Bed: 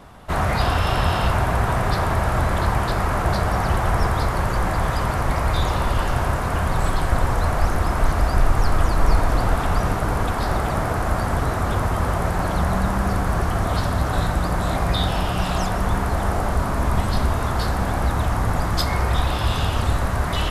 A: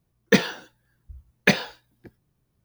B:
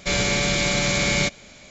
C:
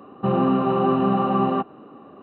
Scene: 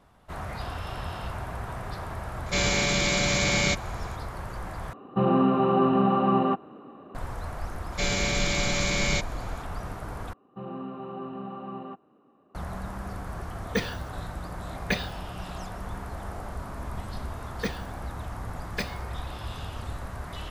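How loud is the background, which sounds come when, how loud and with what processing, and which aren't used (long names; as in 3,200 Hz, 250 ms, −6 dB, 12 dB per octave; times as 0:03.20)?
bed −15 dB
0:02.46: mix in B −3 dB
0:04.93: overwrite with C −2 dB
0:07.92: mix in B −5.5 dB
0:10.33: overwrite with C −17.5 dB
0:13.43: mix in A −7 dB + brickwall limiter −6.5 dBFS
0:17.31: mix in A −14 dB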